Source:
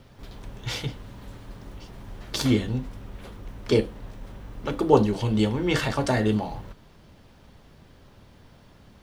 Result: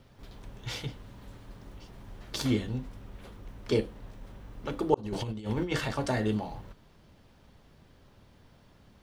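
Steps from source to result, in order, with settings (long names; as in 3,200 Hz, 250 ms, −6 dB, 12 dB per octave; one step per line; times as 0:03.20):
0:04.94–0:05.72: compressor whose output falls as the input rises −27 dBFS, ratio −0.5
level −6 dB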